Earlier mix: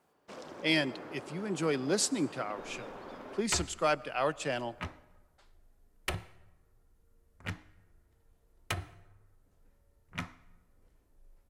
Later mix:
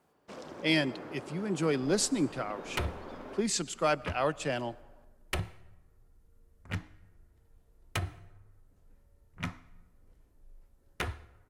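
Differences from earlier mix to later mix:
second sound: entry −0.75 s
master: add low-shelf EQ 280 Hz +5 dB

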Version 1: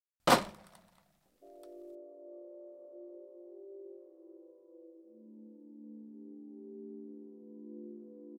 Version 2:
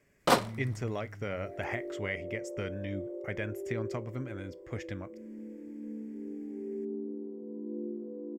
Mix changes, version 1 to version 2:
speech: unmuted
second sound +9.0 dB
master: add parametric band 440 Hz +7 dB 0.23 octaves

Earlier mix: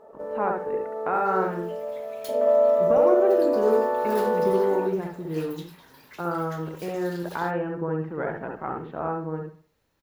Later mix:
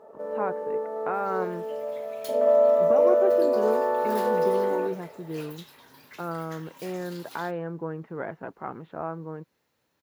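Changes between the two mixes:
speech: send off
master: add high-pass filter 86 Hz

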